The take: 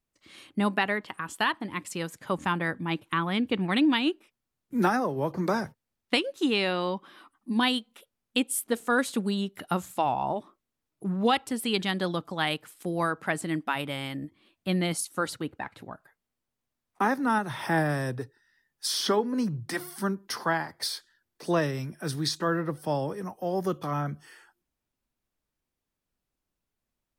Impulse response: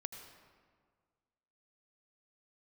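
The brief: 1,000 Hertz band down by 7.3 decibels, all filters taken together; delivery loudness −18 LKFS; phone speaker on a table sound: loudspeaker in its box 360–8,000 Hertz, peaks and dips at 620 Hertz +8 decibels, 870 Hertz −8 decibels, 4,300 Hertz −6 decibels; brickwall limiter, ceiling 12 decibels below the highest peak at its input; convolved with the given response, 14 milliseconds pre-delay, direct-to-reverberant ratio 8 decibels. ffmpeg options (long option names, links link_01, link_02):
-filter_complex "[0:a]equalizer=frequency=1000:width_type=o:gain=-7.5,alimiter=limit=-24dB:level=0:latency=1,asplit=2[link_01][link_02];[1:a]atrim=start_sample=2205,adelay=14[link_03];[link_02][link_03]afir=irnorm=-1:irlink=0,volume=-5.5dB[link_04];[link_01][link_04]amix=inputs=2:normalize=0,highpass=frequency=360:width=0.5412,highpass=frequency=360:width=1.3066,equalizer=frequency=620:width_type=q:width=4:gain=8,equalizer=frequency=870:width_type=q:width=4:gain=-8,equalizer=frequency=4300:width_type=q:width=4:gain=-6,lowpass=frequency=8000:width=0.5412,lowpass=frequency=8000:width=1.3066,volume=18.5dB"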